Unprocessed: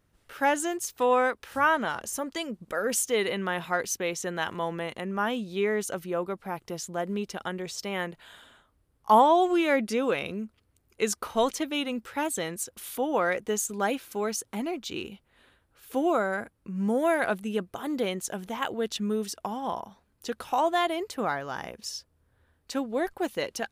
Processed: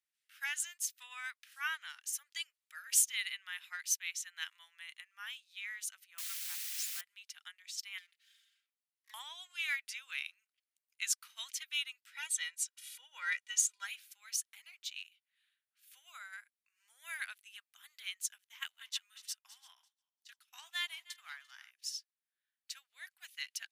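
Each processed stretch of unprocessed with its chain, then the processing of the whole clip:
6.18–7.01 s: high-pass 61 Hz 24 dB/octave + word length cut 6-bit, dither triangular
7.98–9.14 s: comb filter that takes the minimum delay 4.4 ms + high-pass 1.3 kHz + compression 8:1, threshold -41 dBFS
12.12–13.85 s: low-pass 8.9 kHz + bass shelf 350 Hz +9 dB + comb 2.1 ms, depth 92%
18.38–21.71 s: backward echo that repeats 172 ms, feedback 63%, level -12 dB + expander -34 dBFS + high-pass 530 Hz 24 dB/octave
whole clip: inverse Chebyshev high-pass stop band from 320 Hz, stop band 80 dB; upward expansion 1.5:1, over -55 dBFS; trim +1 dB

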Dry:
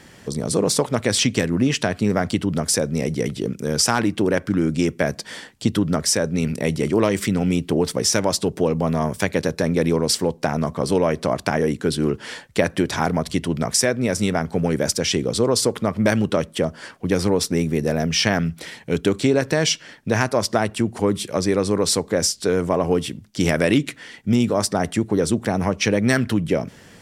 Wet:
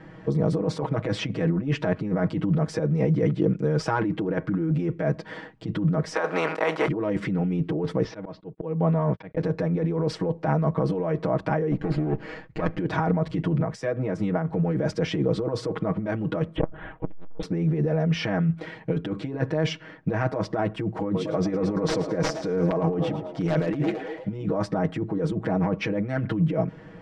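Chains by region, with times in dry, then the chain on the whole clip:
6.14–6.87 s: spectral contrast reduction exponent 0.62 + high-pass 470 Hz + peaking EQ 1.1 kHz +8 dB 1.8 oct
8.04–9.37 s: gate -31 dBFS, range -38 dB + low-pass 4.5 kHz 24 dB/octave + slow attack 395 ms
11.71–12.78 s: comb filter that takes the minimum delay 0.44 ms + low-pass 9 kHz 24 dB/octave
13.60–14.52 s: compression 12:1, threshold -22 dBFS + three bands expanded up and down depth 70%
16.56–17.43 s: LPC vocoder at 8 kHz pitch kept + transformer saturation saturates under 430 Hz
21.03–24.46 s: dynamic bell 5.9 kHz, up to +8 dB, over -38 dBFS, Q 1.7 + integer overflow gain 6 dB + frequency-shifting echo 111 ms, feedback 58%, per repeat +59 Hz, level -14 dB
whole clip: Bessel low-pass 1.2 kHz, order 2; compressor with a negative ratio -24 dBFS, ratio -1; comb 6.3 ms, depth 99%; trim -3 dB

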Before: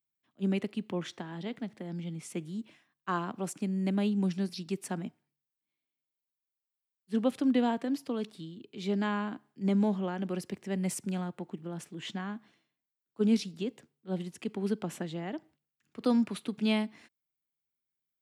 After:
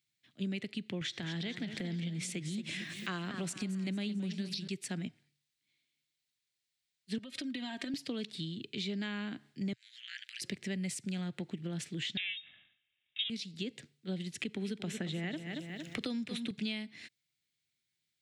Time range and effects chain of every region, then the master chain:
1.01–4.68 s: upward compressor, threshold -32 dBFS + modulated delay 223 ms, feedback 55%, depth 131 cents, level -12 dB
7.18–7.94 s: bass shelf 280 Hz -7.5 dB + compression 12:1, threshold -40 dBFS + comb 3.2 ms, depth 88%
9.73–10.42 s: compression 3:1, threshold -32 dBFS + steep high-pass 1.7 kHz 48 dB/octave + ring modulator 60 Hz
12.17–13.30 s: comb filter that takes the minimum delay 2 ms + peaking EQ 960 Hz +9 dB 1.8 oct + frequency inversion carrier 3.7 kHz
14.40–16.51 s: band-stop 4.6 kHz, Q 8.6 + feedback delay 229 ms, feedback 30%, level -13 dB + three bands compressed up and down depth 70%
whole clip: graphic EQ 125/1000/2000/4000/8000 Hz +8/-10/+9/+12/+8 dB; compression 6:1, threshold -38 dBFS; treble shelf 4.8 kHz -5 dB; trim +3 dB

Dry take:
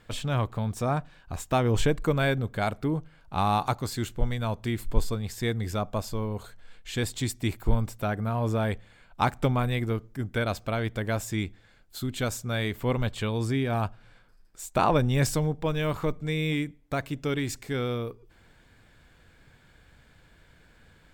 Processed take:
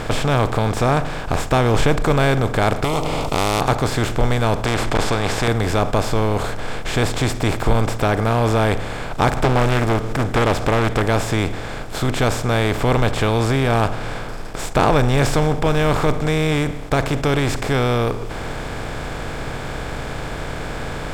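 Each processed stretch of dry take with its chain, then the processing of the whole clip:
2.84–3.61 s: Butterworth band-stop 1.6 kHz, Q 1.2 + spectrum-flattening compressor 4:1
4.65–5.48 s: low-pass 6.7 kHz + hard clipper -19.5 dBFS + spectrum-flattening compressor 2:1
9.37–11.02 s: upward compressor, threshold -34 dBFS + loudspeaker Doppler distortion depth 0.9 ms
whole clip: spectral levelling over time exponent 0.4; waveshaping leveller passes 1; treble shelf 9.8 kHz -11 dB

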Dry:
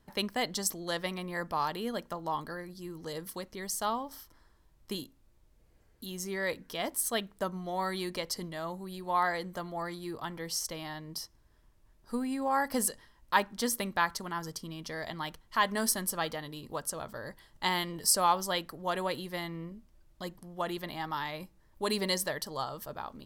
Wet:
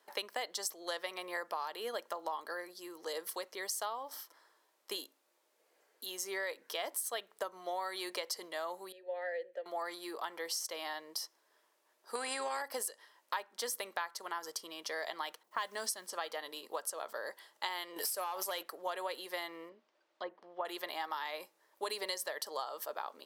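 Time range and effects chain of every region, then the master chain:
8.92–9.66 s: vowel filter e + bass shelf 430 Hz +6.5 dB
12.15–12.62 s: steep low-pass 9.8 kHz + tilt shelf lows +4.5 dB, about 1.1 kHz + spectrum-flattening compressor 2:1
15.43–16.13 s: level-controlled noise filter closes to 770 Hz, open at -23 dBFS + tone controls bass +10 dB, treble +7 dB + modulation noise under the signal 30 dB
17.96–18.63 s: peaking EQ 12 kHz +12 dB 0.52 oct + compression 10:1, threshold -33 dBFS + waveshaping leveller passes 2
19.69–20.65 s: low-pass 4.3 kHz + low-pass that closes with the level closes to 1.5 kHz, closed at -37 dBFS
whole clip: high-pass 430 Hz 24 dB/octave; compression 8:1, threshold -37 dBFS; trim +2.5 dB

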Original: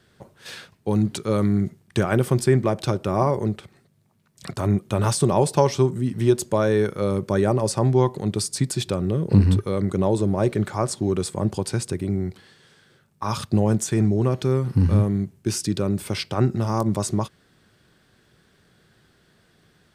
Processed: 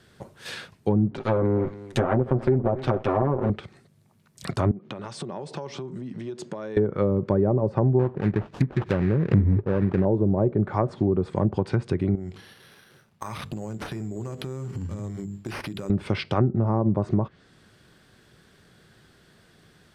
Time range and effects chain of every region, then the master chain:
1.17–3.50 s: comb filter that takes the minimum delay 7.8 ms + bass shelf 160 Hz -6.5 dB + delay 277 ms -19.5 dB
4.71–6.77 s: distance through air 110 m + compression 20:1, threshold -31 dBFS + high-pass 140 Hz 24 dB/octave
7.99–10.05 s: distance through air 300 m + sample-rate reducer 2.1 kHz, jitter 20%
12.15–15.90 s: hum notches 50/100/150/200/250/300/350/400/450/500 Hz + compression 10:1, threshold -32 dBFS + careless resampling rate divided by 6×, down none, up hold
whole clip: low-pass that closes with the level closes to 690 Hz, closed at -17.5 dBFS; dynamic bell 6.4 kHz, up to -4 dB, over -51 dBFS, Q 0.92; compression 2.5:1, threshold -21 dBFS; trim +3 dB

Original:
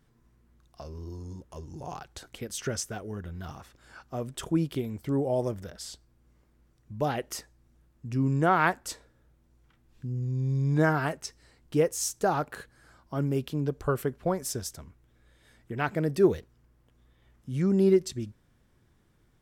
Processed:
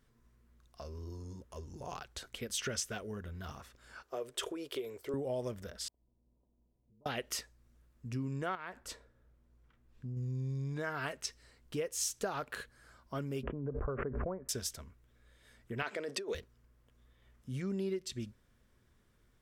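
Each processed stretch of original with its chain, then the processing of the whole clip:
4.02–5.14 s: resonant low shelf 280 Hz -12.5 dB, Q 3 + compression 3:1, threshold -30 dBFS
5.88–7.06 s: compression 8:1, threshold -54 dBFS + rippled Chebyshev low-pass 1 kHz, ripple 6 dB + AM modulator 250 Hz, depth 35%
8.55–10.17 s: treble shelf 2.6 kHz -9 dB + compression, threshold -32 dBFS
13.43–14.49 s: Gaussian low-pass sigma 6.8 samples + swell ahead of each attack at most 41 dB/s
15.82–16.35 s: compressor with a negative ratio -30 dBFS + Chebyshev band-pass 410–7700 Hz
whole clip: dynamic bell 3 kHz, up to +7 dB, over -50 dBFS, Q 1; compression 6:1, threshold -29 dBFS; graphic EQ with 31 bands 100 Hz -6 dB, 160 Hz -9 dB, 315 Hz -7 dB, 800 Hz -6 dB; trim -2 dB

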